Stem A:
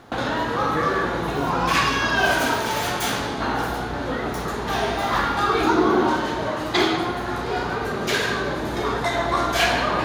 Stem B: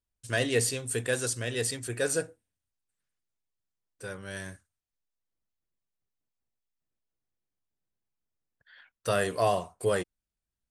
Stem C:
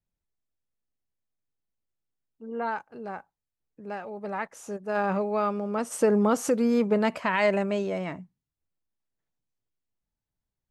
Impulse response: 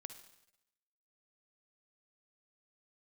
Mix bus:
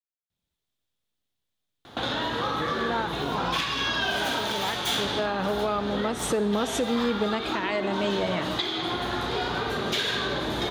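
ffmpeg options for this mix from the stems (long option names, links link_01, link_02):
-filter_complex "[0:a]adelay=1850,volume=-7dB[link_01];[2:a]adelay=300,volume=-2.5dB,asplit=2[link_02][link_03];[link_03]volume=-5.5dB[link_04];[link_01][link_02]amix=inputs=2:normalize=0,highpass=44,acompressor=threshold=-31dB:ratio=6,volume=0dB[link_05];[3:a]atrim=start_sample=2205[link_06];[link_04][link_06]afir=irnorm=-1:irlink=0[link_07];[link_05][link_07]amix=inputs=2:normalize=0,equalizer=frequency=3500:width=2.4:gain=11.5,dynaudnorm=framelen=110:gausssize=7:maxgain=6dB,alimiter=limit=-16dB:level=0:latency=1:release=326"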